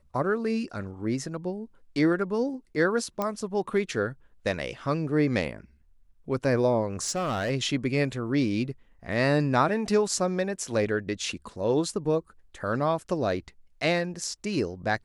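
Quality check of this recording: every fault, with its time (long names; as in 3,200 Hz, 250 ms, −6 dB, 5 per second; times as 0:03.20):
0:03.22: click −15 dBFS
0:07.02–0:07.51: clipping −24 dBFS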